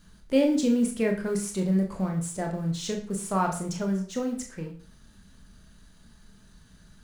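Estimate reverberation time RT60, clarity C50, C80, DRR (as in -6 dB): 0.45 s, 9.5 dB, 13.0 dB, 2.0 dB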